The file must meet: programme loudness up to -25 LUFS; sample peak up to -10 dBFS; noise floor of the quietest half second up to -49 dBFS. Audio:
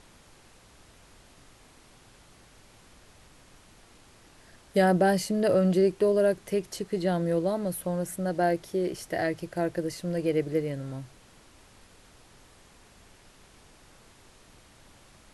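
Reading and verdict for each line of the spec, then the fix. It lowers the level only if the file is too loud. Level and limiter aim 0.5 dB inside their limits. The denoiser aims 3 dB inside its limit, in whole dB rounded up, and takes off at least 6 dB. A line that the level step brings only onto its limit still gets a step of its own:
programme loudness -27.0 LUFS: OK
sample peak -11.5 dBFS: OK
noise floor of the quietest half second -56 dBFS: OK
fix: none

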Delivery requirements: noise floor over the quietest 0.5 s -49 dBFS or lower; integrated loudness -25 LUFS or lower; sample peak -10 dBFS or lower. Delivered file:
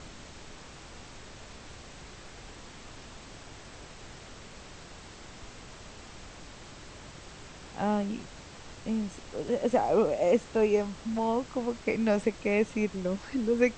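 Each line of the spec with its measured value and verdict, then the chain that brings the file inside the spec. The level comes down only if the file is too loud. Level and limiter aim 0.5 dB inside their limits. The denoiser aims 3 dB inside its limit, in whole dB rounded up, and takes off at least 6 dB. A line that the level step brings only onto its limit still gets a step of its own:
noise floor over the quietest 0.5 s -47 dBFS: fail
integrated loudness -29.5 LUFS: OK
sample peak -12.5 dBFS: OK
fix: denoiser 6 dB, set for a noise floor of -47 dBFS

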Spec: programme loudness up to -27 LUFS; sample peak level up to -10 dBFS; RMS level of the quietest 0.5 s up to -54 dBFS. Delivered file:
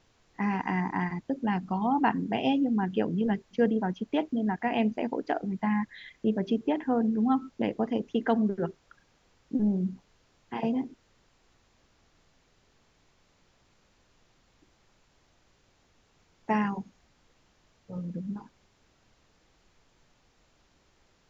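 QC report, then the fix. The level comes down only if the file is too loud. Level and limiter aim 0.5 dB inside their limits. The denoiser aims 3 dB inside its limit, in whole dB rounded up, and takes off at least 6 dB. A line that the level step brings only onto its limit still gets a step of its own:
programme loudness -29.5 LUFS: OK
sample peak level -11.5 dBFS: OK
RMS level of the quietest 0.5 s -66 dBFS: OK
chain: none

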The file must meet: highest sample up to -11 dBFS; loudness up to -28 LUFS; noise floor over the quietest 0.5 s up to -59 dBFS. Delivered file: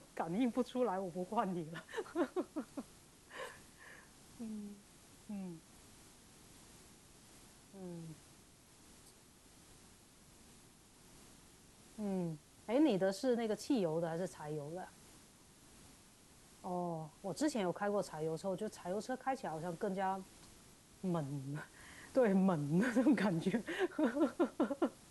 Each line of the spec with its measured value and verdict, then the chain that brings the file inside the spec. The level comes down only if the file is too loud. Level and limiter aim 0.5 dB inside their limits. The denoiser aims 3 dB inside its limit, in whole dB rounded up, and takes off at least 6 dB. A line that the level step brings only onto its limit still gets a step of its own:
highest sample -21.5 dBFS: OK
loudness -38.0 LUFS: OK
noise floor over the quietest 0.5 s -63 dBFS: OK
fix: none

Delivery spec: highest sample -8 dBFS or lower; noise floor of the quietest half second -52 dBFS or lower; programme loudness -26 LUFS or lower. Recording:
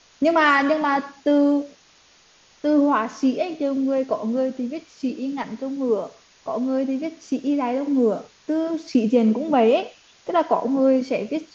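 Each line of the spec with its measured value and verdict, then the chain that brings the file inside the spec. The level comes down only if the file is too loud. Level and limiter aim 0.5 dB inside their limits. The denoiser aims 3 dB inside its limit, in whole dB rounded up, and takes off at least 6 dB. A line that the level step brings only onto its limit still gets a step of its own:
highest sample -5.5 dBFS: fail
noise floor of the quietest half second -55 dBFS: OK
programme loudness -22.0 LUFS: fail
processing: gain -4.5 dB

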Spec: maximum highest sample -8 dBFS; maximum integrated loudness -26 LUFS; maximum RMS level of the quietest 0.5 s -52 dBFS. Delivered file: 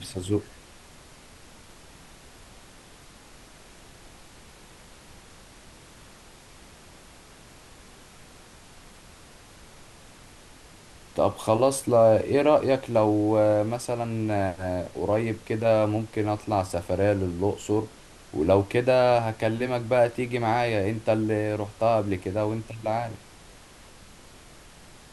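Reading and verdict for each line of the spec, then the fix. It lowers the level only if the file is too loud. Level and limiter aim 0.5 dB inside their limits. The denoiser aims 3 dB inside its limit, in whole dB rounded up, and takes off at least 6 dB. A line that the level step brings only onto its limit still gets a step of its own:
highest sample -6.5 dBFS: fail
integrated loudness -25.0 LUFS: fail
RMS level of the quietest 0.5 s -50 dBFS: fail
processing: denoiser 6 dB, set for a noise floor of -50 dBFS; gain -1.5 dB; limiter -8.5 dBFS

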